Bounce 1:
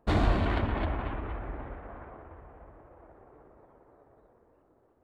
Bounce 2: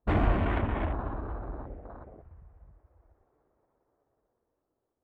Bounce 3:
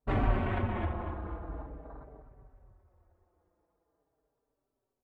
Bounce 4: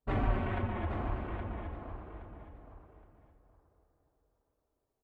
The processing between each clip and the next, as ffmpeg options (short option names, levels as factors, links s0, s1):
-af "afwtdn=0.01"
-filter_complex "[0:a]asplit=2[s0][s1];[s1]aecho=0:1:255|510|765|1020:0.251|0.098|0.0382|0.0149[s2];[s0][s2]amix=inputs=2:normalize=0,asplit=2[s3][s4];[s4]adelay=4.7,afreqshift=-0.43[s5];[s3][s5]amix=inputs=2:normalize=1"
-af "aecho=1:1:819|1638|2457:0.422|0.0928|0.0204,volume=0.75"